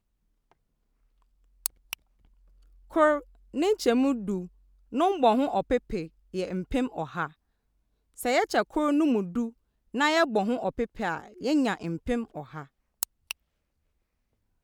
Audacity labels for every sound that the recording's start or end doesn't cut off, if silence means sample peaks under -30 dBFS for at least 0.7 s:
1.660000	1.930000	sound
2.960000	7.260000	sound
8.200000	13.310000	sound